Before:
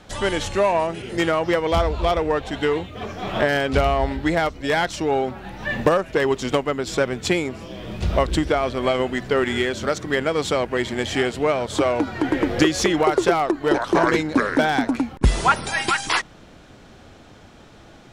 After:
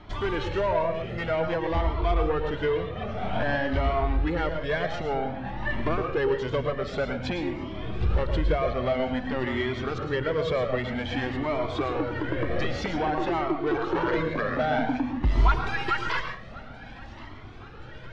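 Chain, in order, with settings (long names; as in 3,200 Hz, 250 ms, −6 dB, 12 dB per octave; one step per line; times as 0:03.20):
in parallel at −2.5 dB: downward compressor, threshold −32 dBFS, peak gain reduction 19 dB
on the sum: soft clipping −15.5 dBFS, distortion −12 dB
high-frequency loss of the air 260 metres
feedback echo with a high-pass in the loop 1,075 ms, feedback 78%, high-pass 900 Hz, level −18 dB
on a send at −6 dB: convolution reverb RT60 0.40 s, pre-delay 104 ms
on the sum: flanger whose copies keep moving one way rising 0.52 Hz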